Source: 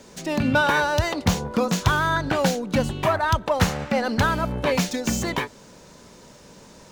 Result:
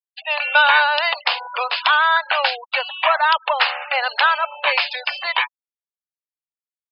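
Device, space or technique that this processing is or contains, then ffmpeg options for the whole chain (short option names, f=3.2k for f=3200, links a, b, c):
musical greeting card: -af "aresample=11025,aresample=44100,highpass=f=750:w=0.5412,highpass=f=750:w=1.3066,equalizer=f=2.7k:t=o:w=0.49:g=8,afftfilt=real='re*gte(hypot(re,im),0.0251)':imag='im*gte(hypot(re,im),0.0251)':win_size=1024:overlap=0.75,volume=7dB"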